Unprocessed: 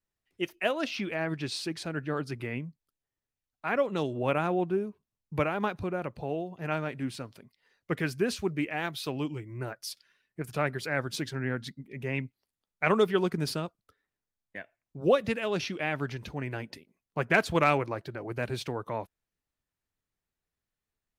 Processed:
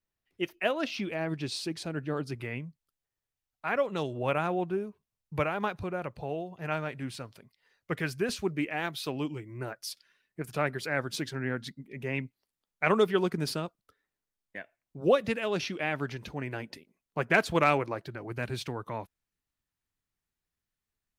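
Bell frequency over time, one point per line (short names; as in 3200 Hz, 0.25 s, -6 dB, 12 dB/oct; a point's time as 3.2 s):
bell -4.5 dB 1.2 oct
8200 Hz
from 0.9 s 1600 Hz
from 2.35 s 270 Hz
from 8.29 s 85 Hz
from 18.07 s 540 Hz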